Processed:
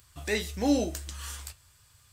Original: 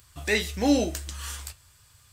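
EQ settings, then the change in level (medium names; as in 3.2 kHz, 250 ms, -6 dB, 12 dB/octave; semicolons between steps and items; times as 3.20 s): dynamic bell 2.4 kHz, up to -4 dB, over -40 dBFS, Q 0.82; -3.0 dB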